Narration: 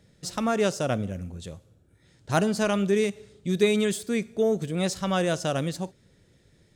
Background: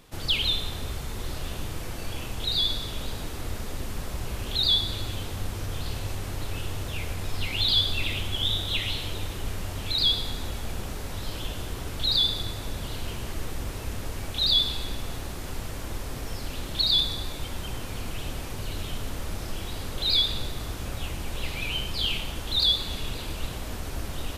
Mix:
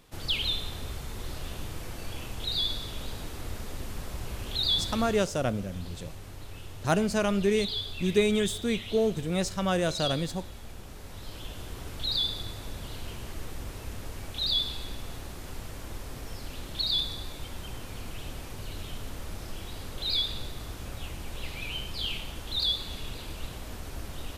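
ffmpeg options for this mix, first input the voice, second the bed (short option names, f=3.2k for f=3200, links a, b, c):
-filter_complex "[0:a]adelay=4550,volume=-2dB[a];[1:a]volume=1.5dB,afade=t=out:st=5.03:d=0.25:silence=0.446684,afade=t=in:st=10.85:d=0.99:silence=0.530884[b];[a][b]amix=inputs=2:normalize=0"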